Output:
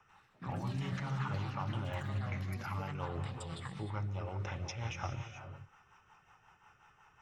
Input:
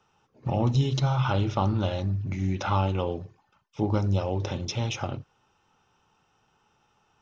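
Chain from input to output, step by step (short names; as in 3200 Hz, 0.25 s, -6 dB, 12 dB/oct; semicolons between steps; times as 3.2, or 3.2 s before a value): ten-band EQ 250 Hz -10 dB, 500 Hz -6 dB, 1000 Hz +5 dB, 2000 Hz +9 dB, 4000 Hz -12 dB; reverse; compressor 6:1, threshold -40 dBFS, peak gain reduction 19.5 dB; reverse; non-linear reverb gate 0.45 s rising, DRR 6.5 dB; rotary speaker horn 5.5 Hz; echoes that change speed 92 ms, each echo +6 st, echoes 3, each echo -6 dB; gain +4 dB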